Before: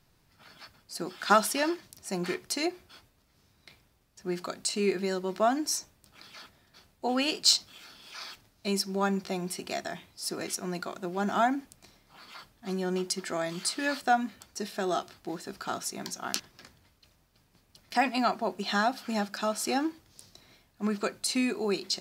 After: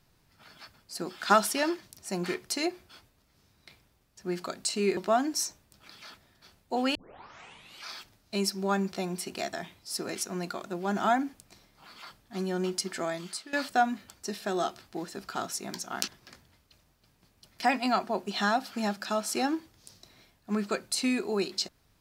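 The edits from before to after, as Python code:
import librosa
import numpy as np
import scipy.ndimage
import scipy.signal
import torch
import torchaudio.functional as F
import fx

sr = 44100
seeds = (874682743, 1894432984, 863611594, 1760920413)

y = fx.edit(x, sr, fx.cut(start_s=4.97, length_s=0.32),
    fx.tape_start(start_s=7.27, length_s=0.91),
    fx.fade_out_to(start_s=13.35, length_s=0.5, floor_db=-18.0), tone=tone)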